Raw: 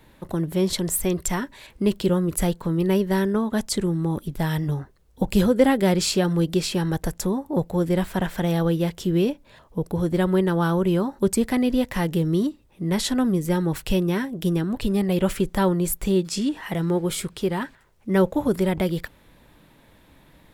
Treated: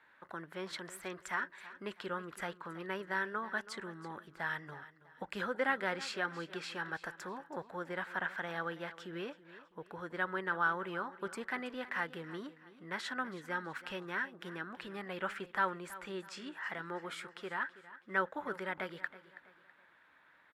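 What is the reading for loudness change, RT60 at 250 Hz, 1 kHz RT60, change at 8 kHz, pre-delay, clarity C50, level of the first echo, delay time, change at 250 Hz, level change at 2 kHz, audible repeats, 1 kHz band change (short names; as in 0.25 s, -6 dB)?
-16.0 dB, none, none, -24.0 dB, none, none, -16.5 dB, 0.326 s, -24.5 dB, -2.0 dB, 3, -7.5 dB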